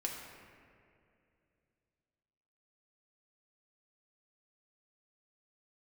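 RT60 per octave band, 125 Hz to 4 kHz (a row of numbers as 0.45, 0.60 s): 3.4, 3.1, 2.9, 2.2, 2.2, 1.4 s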